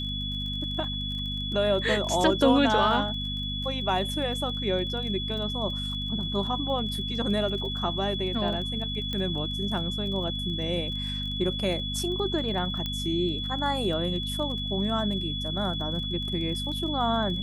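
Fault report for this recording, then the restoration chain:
crackle 27/s -36 dBFS
hum 50 Hz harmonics 5 -34 dBFS
tone 3400 Hz -32 dBFS
9.13 pop -18 dBFS
12.86 pop -17 dBFS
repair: de-click; de-hum 50 Hz, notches 5; notch 3400 Hz, Q 30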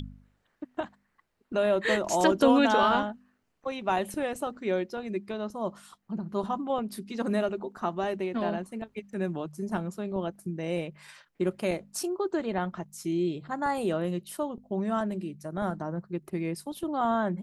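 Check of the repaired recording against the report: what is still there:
9.13 pop

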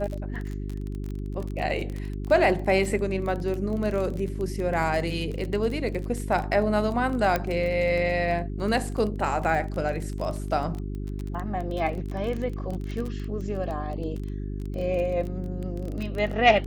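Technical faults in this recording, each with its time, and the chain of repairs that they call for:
crackle 21/s -30 dBFS
hum 50 Hz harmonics 8 -32 dBFS
7.36 pop -11 dBFS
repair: de-click; de-hum 50 Hz, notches 8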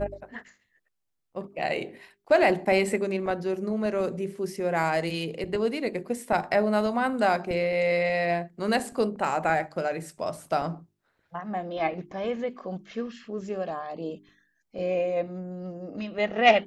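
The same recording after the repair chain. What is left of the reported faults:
none

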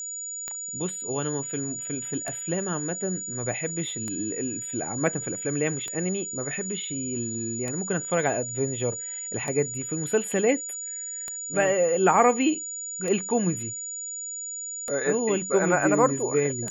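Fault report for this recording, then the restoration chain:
tick 33 1/3 rpm -17 dBFS
tone 6900 Hz -32 dBFS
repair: de-click; notch 6900 Hz, Q 30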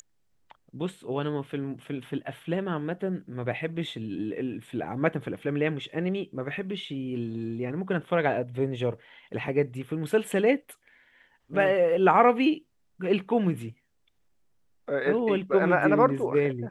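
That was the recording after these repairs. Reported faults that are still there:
none

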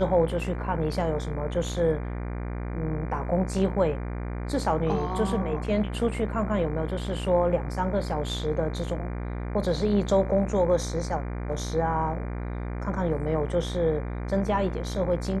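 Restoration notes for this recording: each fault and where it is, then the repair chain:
buzz 60 Hz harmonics 40 -32 dBFS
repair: de-hum 60 Hz, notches 40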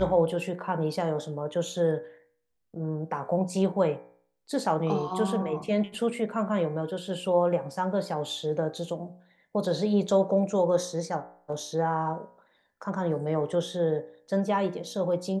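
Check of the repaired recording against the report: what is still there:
none

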